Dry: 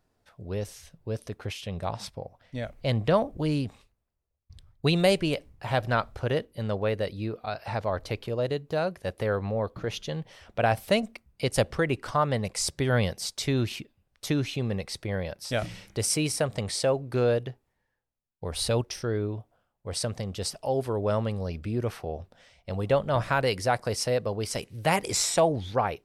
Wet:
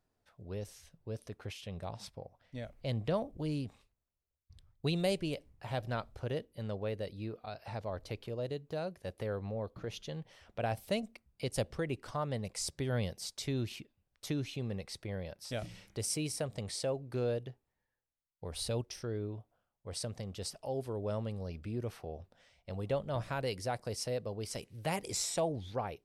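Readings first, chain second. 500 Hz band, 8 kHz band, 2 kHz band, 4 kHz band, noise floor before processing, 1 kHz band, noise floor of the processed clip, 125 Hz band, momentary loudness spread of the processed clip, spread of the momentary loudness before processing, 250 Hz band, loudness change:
-10.0 dB, -9.0 dB, -13.0 dB, -9.5 dB, -77 dBFS, -12.0 dB, under -85 dBFS, -8.5 dB, 11 LU, 12 LU, -9.0 dB, -10.0 dB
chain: dynamic EQ 1400 Hz, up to -6 dB, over -40 dBFS, Q 0.73; gain -8.5 dB

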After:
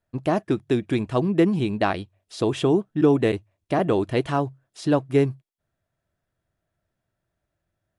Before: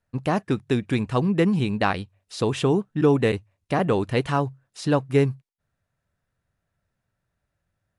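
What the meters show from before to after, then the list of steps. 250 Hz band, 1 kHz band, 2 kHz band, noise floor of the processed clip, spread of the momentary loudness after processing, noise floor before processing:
+1.0 dB, -0.5 dB, -2.5 dB, -82 dBFS, 7 LU, -81 dBFS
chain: small resonant body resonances 340/640/3300 Hz, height 8 dB, ringing for 30 ms; gain -2.5 dB

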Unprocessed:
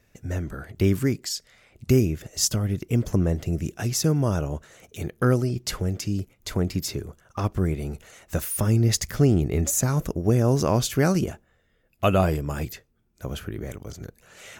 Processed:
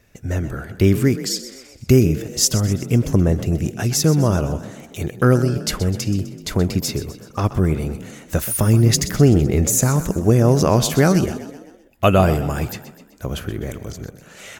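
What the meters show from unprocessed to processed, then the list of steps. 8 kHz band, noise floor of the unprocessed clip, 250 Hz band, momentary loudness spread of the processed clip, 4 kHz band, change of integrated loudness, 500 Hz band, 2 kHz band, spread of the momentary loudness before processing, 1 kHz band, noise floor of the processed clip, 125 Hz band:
+6.5 dB, -66 dBFS, +6.5 dB, 15 LU, +6.5 dB, +6.0 dB, +6.5 dB, +6.5 dB, 15 LU, +6.5 dB, -47 dBFS, +6.0 dB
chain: frequency-shifting echo 0.127 s, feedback 52%, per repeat +32 Hz, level -13.5 dB; gain +6 dB

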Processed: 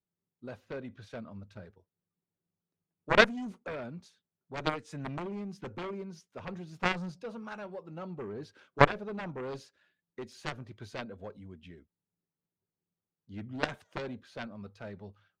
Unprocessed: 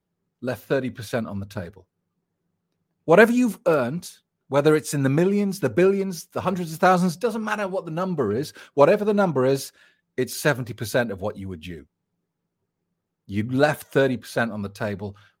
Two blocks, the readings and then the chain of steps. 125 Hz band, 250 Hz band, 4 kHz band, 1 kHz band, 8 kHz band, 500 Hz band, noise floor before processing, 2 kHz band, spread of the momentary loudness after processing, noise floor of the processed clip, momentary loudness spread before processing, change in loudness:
-13.5 dB, -16.0 dB, -4.5 dB, -9.5 dB, -19.0 dB, -15.0 dB, -80 dBFS, -7.0 dB, 22 LU, under -85 dBFS, 16 LU, -11.5 dB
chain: high shelf 11000 Hz +9 dB; added harmonics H 3 -8 dB, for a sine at -2.5 dBFS; air absorption 130 m

